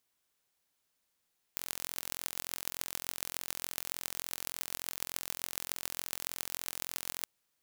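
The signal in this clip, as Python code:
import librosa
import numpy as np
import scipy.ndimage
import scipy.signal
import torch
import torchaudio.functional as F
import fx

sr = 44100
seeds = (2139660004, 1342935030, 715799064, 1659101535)

y = fx.impulse_train(sr, length_s=5.67, per_s=43.4, accent_every=6, level_db=-6.0)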